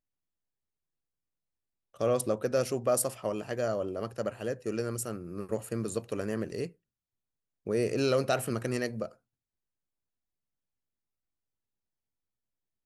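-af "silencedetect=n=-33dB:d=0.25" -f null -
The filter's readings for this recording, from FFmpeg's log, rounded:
silence_start: 0.00
silence_end: 2.01 | silence_duration: 2.01
silence_start: 6.66
silence_end: 7.67 | silence_duration: 1.01
silence_start: 9.06
silence_end: 12.85 | silence_duration: 3.79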